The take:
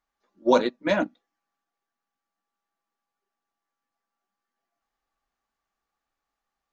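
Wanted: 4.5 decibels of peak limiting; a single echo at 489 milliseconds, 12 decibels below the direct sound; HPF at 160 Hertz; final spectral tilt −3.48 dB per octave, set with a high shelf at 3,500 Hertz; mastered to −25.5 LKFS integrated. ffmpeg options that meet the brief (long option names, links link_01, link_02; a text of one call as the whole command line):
ffmpeg -i in.wav -af "highpass=160,highshelf=frequency=3500:gain=-4.5,alimiter=limit=-12dB:level=0:latency=1,aecho=1:1:489:0.251,volume=1dB" out.wav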